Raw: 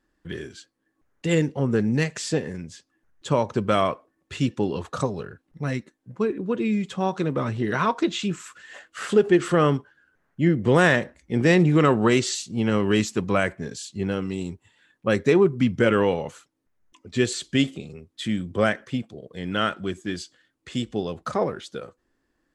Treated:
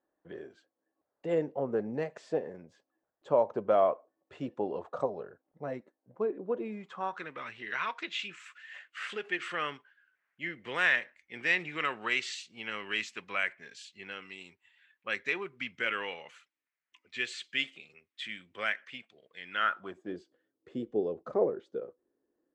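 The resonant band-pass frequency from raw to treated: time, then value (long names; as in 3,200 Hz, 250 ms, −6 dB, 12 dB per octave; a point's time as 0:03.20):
resonant band-pass, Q 2.2
0:06.58 640 Hz
0:07.40 2,300 Hz
0:19.50 2,300 Hz
0:20.20 430 Hz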